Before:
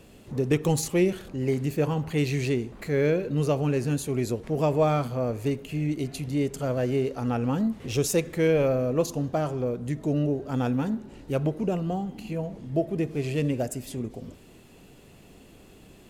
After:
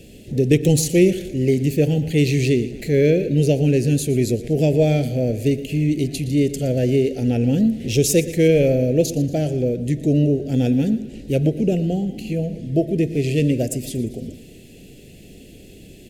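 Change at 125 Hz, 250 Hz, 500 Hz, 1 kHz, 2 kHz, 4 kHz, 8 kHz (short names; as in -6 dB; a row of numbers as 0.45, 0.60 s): +8.5, +8.5, +7.0, -4.5, +5.0, +8.5, +8.5 dB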